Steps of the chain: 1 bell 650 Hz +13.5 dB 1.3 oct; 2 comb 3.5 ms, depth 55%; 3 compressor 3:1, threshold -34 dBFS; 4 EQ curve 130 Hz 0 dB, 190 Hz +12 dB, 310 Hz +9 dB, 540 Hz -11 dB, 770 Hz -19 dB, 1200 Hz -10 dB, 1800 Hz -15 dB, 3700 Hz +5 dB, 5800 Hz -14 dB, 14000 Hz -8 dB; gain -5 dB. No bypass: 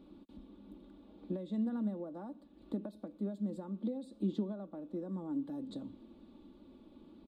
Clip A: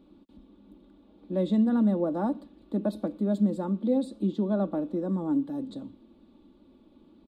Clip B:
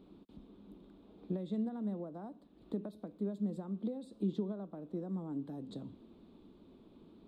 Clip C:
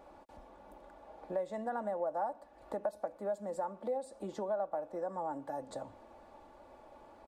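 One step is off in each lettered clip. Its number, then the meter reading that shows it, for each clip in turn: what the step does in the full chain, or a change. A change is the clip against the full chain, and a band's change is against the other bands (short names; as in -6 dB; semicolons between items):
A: 3, mean gain reduction 11.5 dB; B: 2, 250 Hz band -1.5 dB; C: 4, 1 kHz band +27.0 dB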